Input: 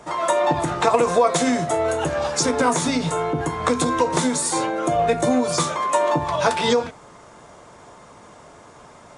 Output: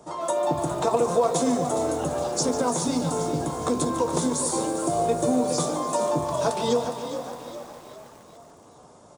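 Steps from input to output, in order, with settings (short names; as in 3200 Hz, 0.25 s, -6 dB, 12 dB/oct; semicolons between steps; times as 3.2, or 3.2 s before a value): HPF 88 Hz 6 dB/oct; bell 2000 Hz -14.5 dB 1.5 oct; on a send: frequency-shifting echo 0.411 s, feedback 48%, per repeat +53 Hz, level -10.5 dB; on the sum: lo-fi delay 0.146 s, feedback 80%, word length 7-bit, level -12 dB; gain -2.5 dB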